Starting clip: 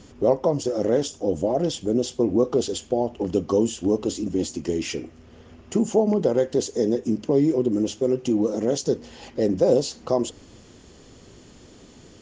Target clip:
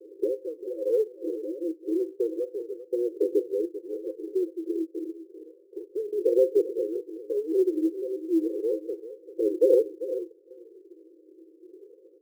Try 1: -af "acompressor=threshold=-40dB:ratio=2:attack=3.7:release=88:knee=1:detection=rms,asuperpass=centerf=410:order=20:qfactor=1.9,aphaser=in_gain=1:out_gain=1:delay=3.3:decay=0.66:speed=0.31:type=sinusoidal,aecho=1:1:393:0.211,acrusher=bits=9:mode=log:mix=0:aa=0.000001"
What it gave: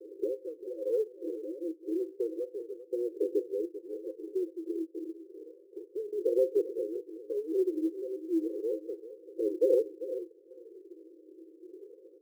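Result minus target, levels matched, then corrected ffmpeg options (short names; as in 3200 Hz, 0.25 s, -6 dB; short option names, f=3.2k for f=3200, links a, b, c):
compressor: peak gain reduction +5.5 dB
-af "acompressor=threshold=-29dB:ratio=2:attack=3.7:release=88:knee=1:detection=rms,asuperpass=centerf=410:order=20:qfactor=1.9,aphaser=in_gain=1:out_gain=1:delay=3.3:decay=0.66:speed=0.31:type=sinusoidal,aecho=1:1:393:0.211,acrusher=bits=9:mode=log:mix=0:aa=0.000001"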